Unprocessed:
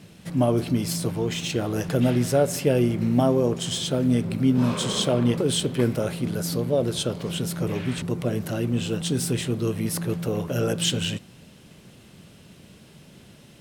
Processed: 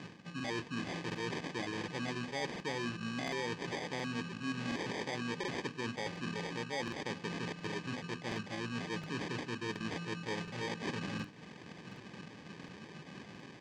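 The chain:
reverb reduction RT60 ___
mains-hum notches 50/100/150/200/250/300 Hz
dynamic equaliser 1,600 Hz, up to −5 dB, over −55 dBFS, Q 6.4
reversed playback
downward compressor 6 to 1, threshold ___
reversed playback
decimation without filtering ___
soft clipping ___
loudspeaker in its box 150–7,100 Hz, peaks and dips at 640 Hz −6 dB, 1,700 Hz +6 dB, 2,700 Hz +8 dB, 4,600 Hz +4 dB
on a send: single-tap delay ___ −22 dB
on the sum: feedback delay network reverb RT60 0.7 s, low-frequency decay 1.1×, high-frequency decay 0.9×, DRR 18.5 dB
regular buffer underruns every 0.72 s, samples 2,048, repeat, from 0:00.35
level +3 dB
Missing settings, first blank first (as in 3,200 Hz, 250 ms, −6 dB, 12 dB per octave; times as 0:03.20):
0.65 s, −37 dBFS, 32×, −32.5 dBFS, 396 ms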